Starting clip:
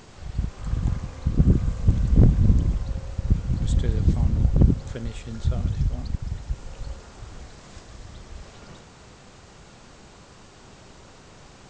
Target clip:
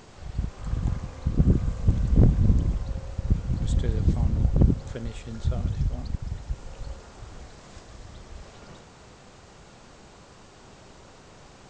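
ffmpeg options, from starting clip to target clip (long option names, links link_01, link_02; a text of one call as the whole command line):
ffmpeg -i in.wav -af "equalizer=frequency=630:width_type=o:width=1.9:gain=2.5,volume=-2.5dB" out.wav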